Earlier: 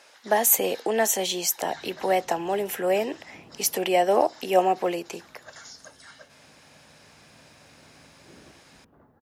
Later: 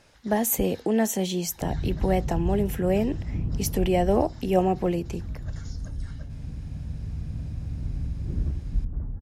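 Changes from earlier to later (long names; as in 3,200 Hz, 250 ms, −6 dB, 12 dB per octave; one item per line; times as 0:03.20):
speech −6.5 dB
master: remove high-pass filter 570 Hz 12 dB per octave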